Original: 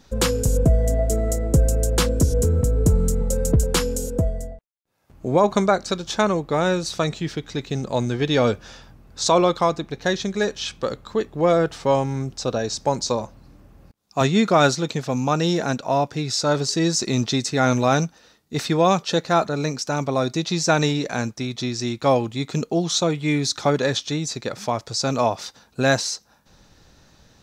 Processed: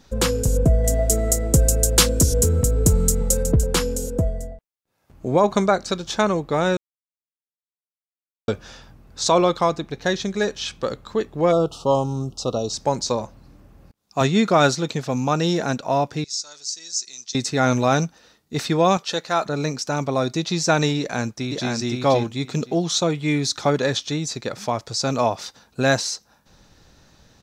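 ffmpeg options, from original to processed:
-filter_complex "[0:a]asettb=1/sr,asplit=3[a][b][c];[a]atrim=end=0.844[d];[b]atrim=start=0.84:end=3.43,asetpts=PTS-STARTPTS,afade=t=in:d=0.004:c=qsin,afade=t=out:st=2.586:d=0.004:c=qsin,highshelf=f=2.4k:g=10.5[e];[c]atrim=start=3.426[f];[d][e]acrossfade=d=0.004:c1=hsin:c2=qsin[g];[g][f]acrossfade=d=0.004:c1=qsin:c2=hsin,asplit=3[h][i][j];[h]afade=t=out:st=11.51:d=0.02[k];[i]asuperstop=centerf=1900:order=12:qfactor=1.4,afade=t=in:st=11.51:d=0.02,afade=t=out:st=12.72:d=0.02[l];[j]afade=t=in:st=12.72:d=0.02[m];[k][l][m]amix=inputs=3:normalize=0,asettb=1/sr,asplit=3[n][o][p];[n]atrim=end=16.244[q];[o]atrim=start=16.24:end=17.35,asetpts=PTS-STARTPTS,afade=t=in:d=0.004:c=qsin,afade=t=out:st=1.106:d=0.004:c=qsin,bandpass=f=6.2k:t=q:w=2.6[r];[p]atrim=start=17.346[s];[q][r]acrossfade=d=0.004:c1=hsin:c2=qsin[t];[t][s]acrossfade=d=0.004:c1=qsin:c2=hsin,asettb=1/sr,asplit=3[u][v][w];[u]atrim=end=18.974[x];[v]atrim=start=18.97:end=19.46,asetpts=PTS-STARTPTS,afade=t=in:d=0.004:c=qsin,afade=t=out:st=0.486:d=0.004:c=qsin,lowshelf=f=430:g=-11[y];[w]atrim=start=19.456[z];[x][y]acrossfade=d=0.004:c1=hsin:c2=qsin[aa];[aa][z]acrossfade=d=0.004:c1=qsin:c2=hsin,asplit=2[ab][ac];[ac]afade=t=in:st=20.99:d=0.01,afade=t=out:st=21.71:d=0.01,aecho=0:1:520|1040|1560:0.749894|0.112484|0.0168726[ad];[ab][ad]amix=inputs=2:normalize=0,asplit=3[ae][af][ag];[ae]atrim=end=6.77,asetpts=PTS-STARTPTS,afade=t=out:st=6.766:d=0.004:c=hsin[ah];[af]atrim=start=6.77:end=8.48,asetpts=PTS-STARTPTS,volume=0[ai];[ag]atrim=start=8.48,asetpts=PTS-STARTPTS,afade=t=in:d=0.004:c=hsin[aj];[ah][ai][aj]concat=n=3:v=0:a=1"

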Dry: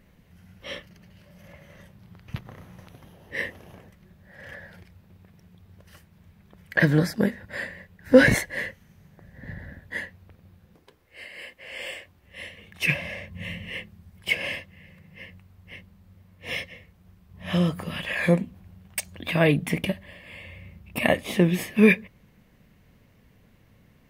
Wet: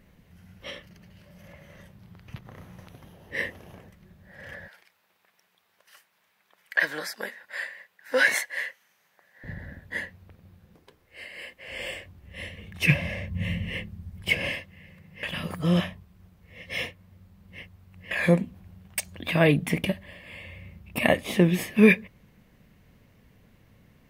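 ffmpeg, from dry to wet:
-filter_complex "[0:a]asettb=1/sr,asplit=3[a][b][c];[a]atrim=end=0.704[d];[b]atrim=start=0.7:end=2.55,asetpts=PTS-STARTPTS,afade=t=in:d=0.004:c=qsin,afade=t=out:st=1.846:d=0.004:c=qsin,acompressor=threshold=-44dB:ratio=1.5:attack=3.2:release=140:knee=1:detection=peak[e];[c]atrim=start=2.546[f];[d][e]acrossfade=d=0.004:c1=hsin:c2=qsin[g];[g][f]acrossfade=d=0.004:c1=qsin:c2=hsin,asettb=1/sr,asplit=3[h][i][j];[h]atrim=end=4.684[k];[i]atrim=start=4.68:end=9.44,asetpts=PTS-STARTPTS,afade=t=in:d=0.004:c=qsin,afade=t=out:st=4.756:d=0.004:c=qsin,highpass=890[l];[j]atrim=start=9.436[m];[k][l]acrossfade=d=0.004:c1=hsin:c2=qsin[n];[n][m]acrossfade=d=0.004:c1=qsin:c2=hsin,asettb=1/sr,asplit=3[o][p][q];[o]atrim=end=11.684[r];[p]atrim=start=11.68:end=14.51,asetpts=PTS-STARTPTS,afade=t=in:d=0.004:c=qsin,afade=t=out:st=2.826:d=0.004:c=qsin,lowshelf=f=240:g=11[s];[q]atrim=start=14.506[t];[r][s]acrossfade=d=0.004:c1=hsin:c2=qsin[u];[u][t]acrossfade=d=0.004:c1=qsin:c2=hsin,asplit=3[v][w][x];[v]atrim=end=15.232[y];[w]atrim=start=15.228:end=18.112,asetpts=PTS-STARTPTS,areverse[z];[x]atrim=start=18.108[aa];[y][z]acrossfade=d=0.004:c1=hsin:c2=hsin[ab];[ab][aa]acrossfade=d=0.004:c1=hsin:c2=hsin"

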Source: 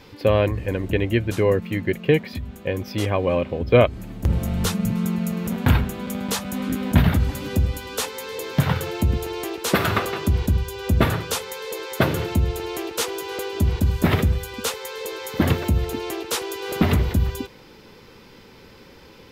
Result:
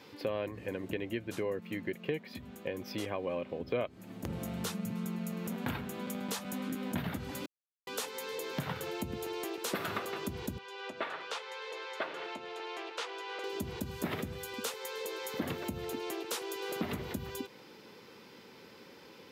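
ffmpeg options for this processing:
-filter_complex "[0:a]asettb=1/sr,asplit=3[a][b][c];[a]atrim=end=10.584[d];[b]atrim=start=10.58:end=13.44,asetpts=PTS-STARTPTS,afade=t=in:d=0.004:c=qsin,afade=t=out:st=2.856:d=0.004:c=qsin,highpass=630,lowpass=3.6k[e];[c]atrim=start=13.436[f];[d][e]acrossfade=d=0.004:c1=hsin:c2=qsin[g];[g][f]acrossfade=d=0.004:c1=qsin:c2=hsin,asplit=3[h][i][j];[h]atrim=end=7.46,asetpts=PTS-STARTPTS,afade=t=out:st=7.456:d=0.004:c=hsin[k];[i]atrim=start=7.46:end=7.87,asetpts=PTS-STARTPTS,volume=0[l];[j]atrim=start=7.87,asetpts=PTS-STARTPTS,afade=t=in:d=0.004:c=hsin[m];[k][l][m]concat=n=3:v=0:a=1,highpass=180,acompressor=threshold=-30dB:ratio=2.5,volume=-6dB"

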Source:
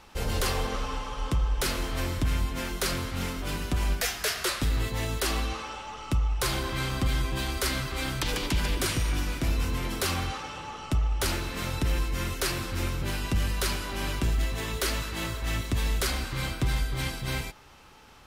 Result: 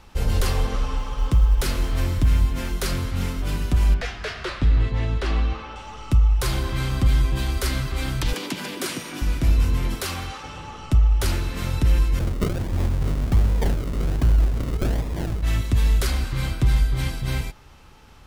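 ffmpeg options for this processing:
-filter_complex "[0:a]asettb=1/sr,asplit=3[a][b][c];[a]atrim=end=0.984[d];[b]atrim=start=0.98:end=2.74,asetpts=PTS-STARTPTS,afade=t=in:d=0.004:c=qsin,afade=t=out:st=1.756:d=0.004:c=qsin,acrusher=bits=8:mode=log:mix=0:aa=0.000001[e];[c]atrim=start=2.736[f];[d][e]acrossfade=d=0.004:c1=hsin:c2=qsin[g];[g][f]acrossfade=d=0.004:c1=qsin:c2=hsin,asettb=1/sr,asplit=3[h][i][j];[h]atrim=end=3.944[k];[i]atrim=start=3.94:end=5.76,asetpts=PTS-STARTPTS,afade=t=in:d=0.004:c=qsin,afade=t=out:st=1.816:d=0.004:c=qsin,lowpass=3.3k[l];[j]atrim=start=5.756[m];[k][l]acrossfade=d=0.004:c1=hsin:c2=qsin[n];[n][m]acrossfade=d=0.004:c1=qsin:c2=hsin,asettb=1/sr,asplit=3[o][p][q];[o]atrim=end=8.334[r];[p]atrim=start=8.33:end=9.22,asetpts=PTS-STARTPTS,afade=t=in:d=0.004:c=qsin,afade=t=out:st=0.886:d=0.004:c=qsin,highpass=f=200:w=0.5412,highpass=f=200:w=1.3066[s];[q]atrim=start=9.216[t];[r][s]acrossfade=d=0.004:c1=hsin:c2=qsin[u];[u][t]acrossfade=d=0.004:c1=qsin:c2=hsin,asettb=1/sr,asplit=3[v][w][x];[v]atrim=end=9.954[y];[w]atrim=start=9.95:end=10.44,asetpts=PTS-STARTPTS,afade=t=in:d=0.004:c=qsin,afade=t=out:st=0.486:d=0.004:c=qsin,lowshelf=f=270:g=-10[z];[x]atrim=start=10.436[aa];[y][z]acrossfade=d=0.004:c1=hsin:c2=qsin[ab];[ab][aa]acrossfade=d=0.004:c1=qsin:c2=hsin,asettb=1/sr,asplit=3[ac][ad][ae];[ac]atrim=end=12.194[af];[ad]atrim=start=12.19:end=15.43,asetpts=PTS-STARTPTS,afade=t=in:d=0.004:c=qsin,afade=t=out:st=3.236:d=0.004:c=qsin,acrusher=samples=42:mix=1:aa=0.000001:lfo=1:lforange=25.2:lforate=1.3[ag];[ae]atrim=start=15.426[ah];[af][ag]acrossfade=d=0.004:c1=hsin:c2=qsin[ai];[ai][ah]acrossfade=d=0.004:c1=qsin:c2=hsin,lowshelf=f=180:g=10.5"

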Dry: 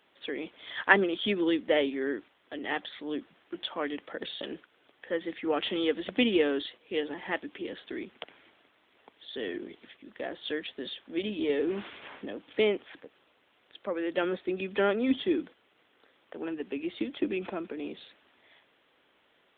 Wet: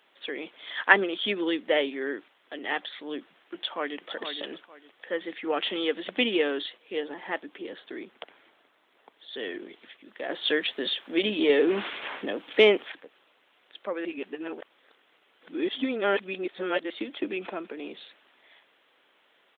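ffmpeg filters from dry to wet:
-filter_complex "[0:a]asplit=2[a][b];[b]afade=t=in:st=3.55:d=0.01,afade=t=out:st=4.1:d=0.01,aecho=0:1:460|920|1380:0.398107|0.0995268|0.0248817[c];[a][c]amix=inputs=2:normalize=0,asettb=1/sr,asplit=3[d][e][f];[d]atrim=end=6.934[g];[e]atrim=start=6.93:end=9.32,asetpts=PTS-STARTPTS,afade=t=in:d=0.004:c=qsin,afade=t=out:st=2.386:d=0.004:c=qsin,equalizer=f=2.7k:t=o:w=1.4:g=-5[h];[f]atrim=start=9.316[i];[g][h]acrossfade=d=0.004:c1=hsin:c2=qsin[j];[j][i]acrossfade=d=0.004:c1=qsin:c2=hsin,asettb=1/sr,asplit=3[k][l][m];[k]atrim=end=10.294[n];[l]atrim=start=10.29:end=12.92,asetpts=PTS-STARTPTS,afade=t=in:d=0.004:c=qsin,afade=t=out:st=2.626:d=0.004:c=qsin,acontrast=89[o];[m]atrim=start=12.916[p];[n][o]acrossfade=d=0.004:c1=hsin:c2=qsin[q];[q][p]acrossfade=d=0.004:c1=qsin:c2=hsin,asplit=3[r][s][t];[r]atrim=end=14.052[u];[s]atrim=start=14.048:end=16.902,asetpts=PTS-STARTPTS,areverse[v];[t]atrim=start=16.898[w];[u][v]acrossfade=d=0.004:c1=hsin:c2=hsin[x];[x][w]acrossfade=d=0.004:c1=hsin:c2=hsin,highpass=f=480:p=1,volume=3.5dB"

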